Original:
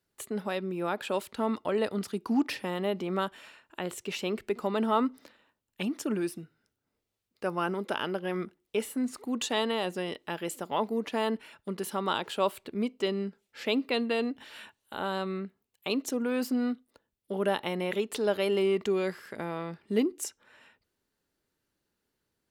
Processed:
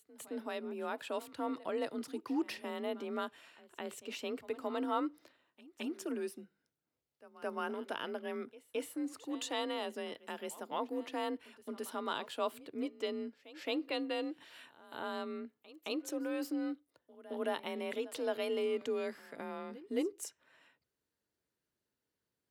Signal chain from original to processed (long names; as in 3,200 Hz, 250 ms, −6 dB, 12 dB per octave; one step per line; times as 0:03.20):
frequency shifter +40 Hz
echo ahead of the sound 218 ms −18.5 dB
level −8 dB